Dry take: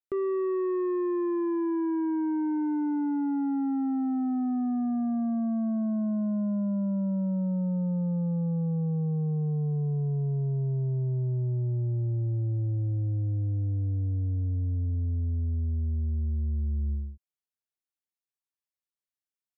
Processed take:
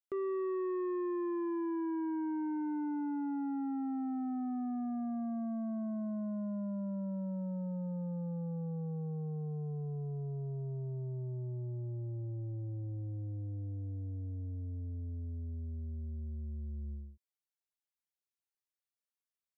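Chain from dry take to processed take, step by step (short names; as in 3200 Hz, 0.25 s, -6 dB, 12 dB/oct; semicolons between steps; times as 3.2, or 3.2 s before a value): low shelf 250 Hz -8.5 dB; gain -4.5 dB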